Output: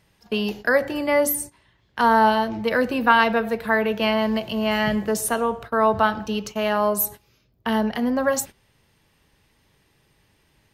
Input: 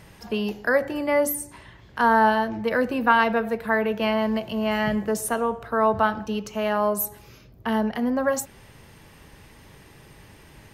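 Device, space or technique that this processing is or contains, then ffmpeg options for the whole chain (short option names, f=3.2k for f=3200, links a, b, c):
presence and air boost: -filter_complex "[0:a]agate=range=-16dB:threshold=-37dB:ratio=16:detection=peak,asettb=1/sr,asplit=3[a][b][c];[a]atrim=end=2.004[d];[b]atrim=start=2:end=2.67,asetpts=PTS-STARTPTS,afade=t=in:d=0.004:c=qsin,afade=t=out:st=0.666:d=0.004:c=qsin,bandreject=f=1.7k:w=6.9[e];[c]atrim=start=2.666[f];[d][e]acrossfade=d=0.004:c1=hsin:c2=qsin[g];[g][f]acrossfade=d=0.004:c1=qsin:c2=hsin,equalizer=f=3.9k:t=o:w=1.3:g=5,highshelf=f=11k:g=4,volume=1.5dB"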